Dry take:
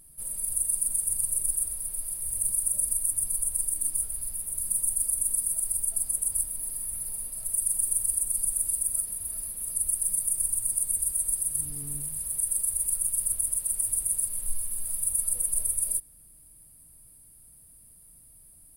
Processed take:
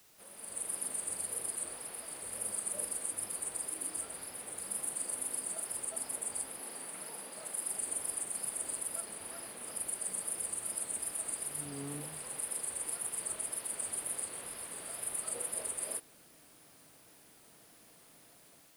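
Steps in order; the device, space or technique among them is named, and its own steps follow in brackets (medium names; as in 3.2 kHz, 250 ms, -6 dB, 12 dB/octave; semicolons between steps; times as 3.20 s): dictaphone (band-pass 360–3100 Hz; level rider gain up to 10.5 dB; wow and flutter; white noise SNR 23 dB); 6.60–7.71 s: high-pass 130 Hz 24 dB/octave; trim +1.5 dB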